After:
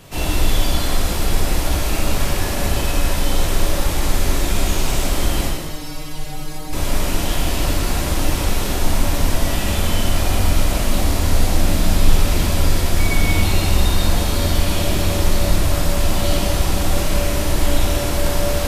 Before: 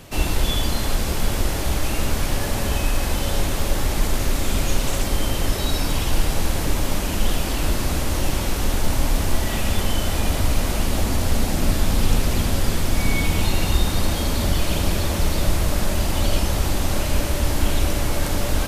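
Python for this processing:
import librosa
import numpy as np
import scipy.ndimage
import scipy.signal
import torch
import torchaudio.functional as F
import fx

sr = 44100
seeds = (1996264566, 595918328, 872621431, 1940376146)

y = fx.stiff_resonator(x, sr, f0_hz=150.0, decay_s=0.23, stiffness=0.002, at=(5.47, 6.73))
y = fx.rev_gated(y, sr, seeds[0], gate_ms=450, shape='falling', drr_db=-3.5)
y = y * 10.0 ** (-2.0 / 20.0)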